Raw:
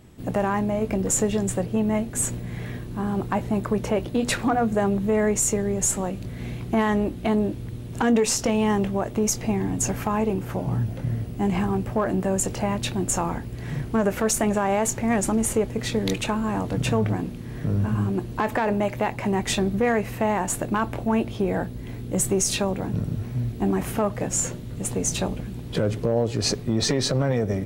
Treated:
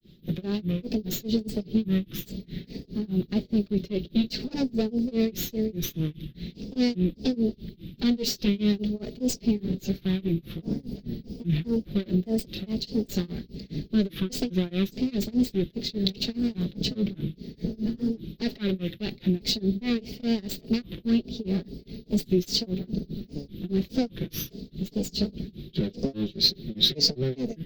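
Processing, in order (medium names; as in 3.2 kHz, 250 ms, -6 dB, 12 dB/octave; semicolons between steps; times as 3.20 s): comb filter that takes the minimum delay 5.1 ms; FFT filter 110 Hz 0 dB, 180 Hz +4 dB, 410 Hz +1 dB, 970 Hz -23 dB, 2.8 kHz -1 dB, 4.2 kHz +13 dB, 9.5 kHz -25 dB, 14 kHz +4 dB; granulator 226 ms, grains 4.9 per s, spray 15 ms, pitch spread up and down by 3 st; trim -1 dB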